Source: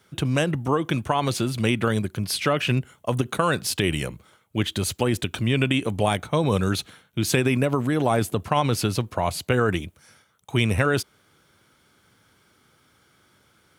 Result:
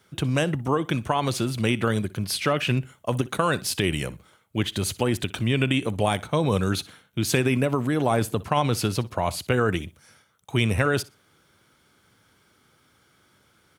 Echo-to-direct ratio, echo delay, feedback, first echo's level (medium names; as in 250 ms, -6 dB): -20.0 dB, 61 ms, 21%, -20.0 dB